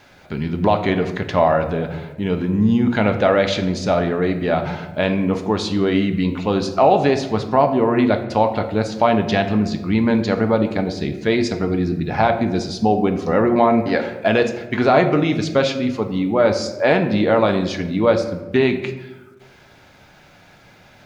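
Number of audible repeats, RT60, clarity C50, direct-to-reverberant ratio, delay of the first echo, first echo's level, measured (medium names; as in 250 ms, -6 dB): no echo, 1.2 s, 10.0 dB, 6.0 dB, no echo, no echo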